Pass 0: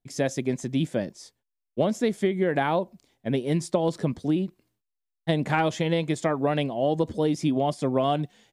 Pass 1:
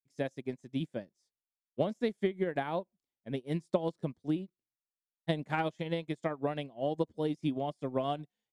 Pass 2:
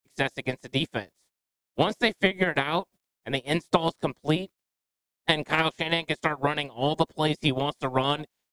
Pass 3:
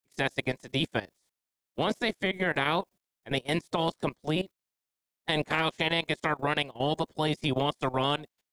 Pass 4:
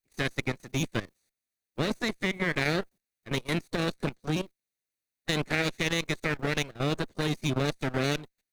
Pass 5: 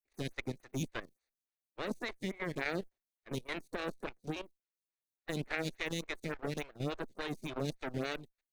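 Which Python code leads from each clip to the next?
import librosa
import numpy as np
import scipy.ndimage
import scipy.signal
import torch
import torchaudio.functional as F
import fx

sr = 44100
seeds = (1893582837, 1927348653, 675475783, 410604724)

y1 = fx.upward_expand(x, sr, threshold_db=-37.0, expansion=2.5)
y1 = y1 * 10.0 ** (-4.0 / 20.0)
y2 = fx.spec_clip(y1, sr, under_db=19)
y2 = y2 * 10.0 ** (8.0 / 20.0)
y3 = fx.level_steps(y2, sr, step_db=16)
y3 = y3 * 10.0 ** (5.5 / 20.0)
y4 = fx.lower_of_two(y3, sr, delay_ms=0.47)
y5 = fx.stagger_phaser(y4, sr, hz=3.5)
y5 = y5 * 10.0 ** (-6.0 / 20.0)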